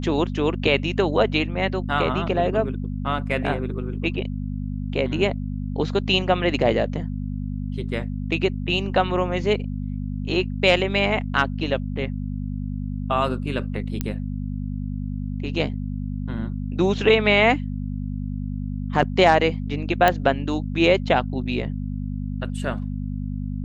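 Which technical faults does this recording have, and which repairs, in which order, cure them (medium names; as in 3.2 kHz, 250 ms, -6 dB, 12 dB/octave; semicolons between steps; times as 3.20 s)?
hum 50 Hz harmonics 5 -28 dBFS
14.01 s: pop -10 dBFS
20.08 s: pop -5 dBFS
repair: de-click; de-hum 50 Hz, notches 5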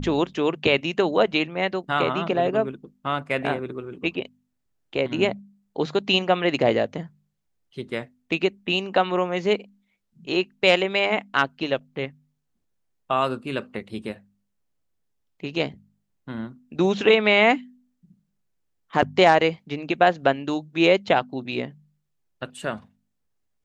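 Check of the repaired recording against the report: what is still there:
nothing left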